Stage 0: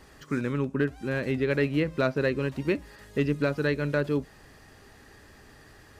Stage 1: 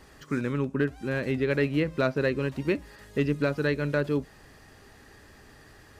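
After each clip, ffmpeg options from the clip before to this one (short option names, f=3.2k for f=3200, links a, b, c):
-af anull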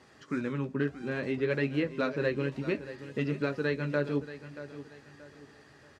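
-af "flanger=delay=7.9:depth=7:regen=-37:speed=0.61:shape=triangular,highpass=110,lowpass=7.1k,aecho=1:1:630|1260|1890:0.211|0.0719|0.0244"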